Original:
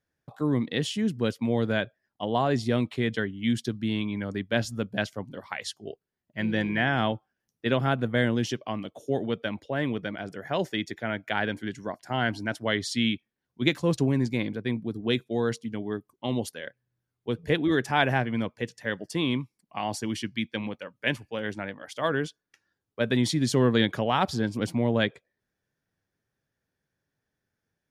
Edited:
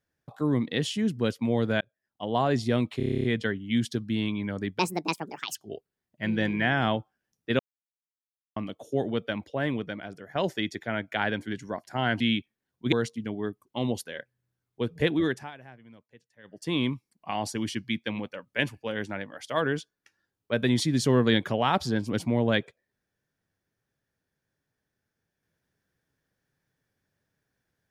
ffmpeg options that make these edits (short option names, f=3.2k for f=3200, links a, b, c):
-filter_complex "[0:a]asplit=20[a][b][c][d][e][f][g][h][i][j][k][l][m][n][o][p][q][r][s][t];[a]atrim=end=1.81,asetpts=PTS-STARTPTS,afade=t=out:st=1.806:d=0.004:c=hsin[u];[b]atrim=start=1.81:end=3.002,asetpts=PTS-STARTPTS,afade=t=in:d=0.59[v];[c]atrim=start=2.968:end=3.002[w];[d]atrim=start=2.968:end=3.002[x];[e]atrim=start=2.968:end=3.002[y];[f]atrim=start=2.968:end=3.002[z];[g]atrim=start=2.968:end=3.002[aa];[h]atrim=start=2.968:end=3.002[ab];[i]atrim=start=2.968:end=3.002[ac];[j]atrim=start=2.968:end=3.002[ad];[k]atrim=start=2.968:end=4.524[ae];[l]atrim=start=4.52:end=5.71,asetpts=PTS-STARTPTS,asetrate=68796,aresample=44100,atrim=end_sample=33640,asetpts=PTS-STARTPTS[af];[m]atrim=start=5.706:end=7.75,asetpts=PTS-STARTPTS,afade=t=out:st=2.04:d=0.004:c=hsin[ag];[n]atrim=start=7.75:end=8.72,asetpts=PTS-STARTPTS,volume=0[ah];[o]atrim=start=8.72:end=10.51,asetpts=PTS-STARTPTS,afade=t=in:d=0.004:c=hsin,afade=t=out:st=1.06:d=0.73:silence=0.398107[ai];[p]atrim=start=10.51:end=12.362,asetpts=PTS-STARTPTS,afade=t=in:d=0.004:c=hsin:silence=0.398107[aj];[q]atrim=start=12.958:end=13.682[ak];[r]atrim=start=15.398:end=17.99,asetpts=PTS-STARTPTS,afade=t=out:st=2.262:d=0.33:silence=0.0668344[al];[s]atrim=start=17.99:end=18.91,asetpts=PTS-STARTPTS,volume=-23.5dB[am];[t]atrim=start=18.91,asetpts=PTS-STARTPTS,afade=t=in:d=0.33:silence=0.0668344[an];[u][v]concat=n=2:v=0:a=1[ao];[ao][w]acrossfade=d=0.004:c1=hsin:c2=hsin[ap];[ap][x]acrossfade=d=0.004:c1=hsin:c2=hsin[aq];[aq][y]acrossfade=d=0.004:c1=hsin:c2=hsin[ar];[ar][z]acrossfade=d=0.004:c1=hsin:c2=hsin[as];[as][aa]acrossfade=d=0.004:c1=hsin:c2=hsin[at];[at][ab]acrossfade=d=0.004:c1=hsin:c2=hsin[au];[au][ac]acrossfade=d=0.004:c1=hsin:c2=hsin[av];[av][ad]acrossfade=d=0.004:c1=hsin:c2=hsin[aw];[aw][ae]acrossfade=d=0.004:c1=hsin:c2=hsin[ax];[ax][af]acrossfade=d=0.004:c1=hsin:c2=hsin[ay];[ag][ah][ai][aj]concat=n=4:v=0:a=1[az];[ay][az]acrossfade=d=0.004:c1=hsin:c2=hsin[ba];[ba][ak]acrossfade=d=0.004:c1=hsin:c2=hsin[bb];[al][am][an]concat=n=3:v=0:a=1[bc];[bb][bc]acrossfade=d=0.004:c1=hsin:c2=hsin"